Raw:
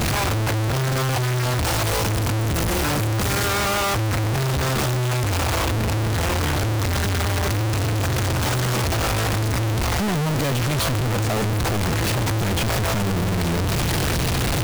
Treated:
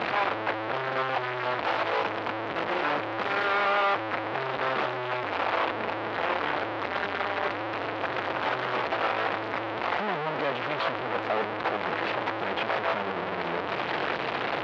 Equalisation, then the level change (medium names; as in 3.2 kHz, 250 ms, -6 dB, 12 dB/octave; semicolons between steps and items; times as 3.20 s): band-pass 530–3900 Hz; distance through air 350 m; +1.5 dB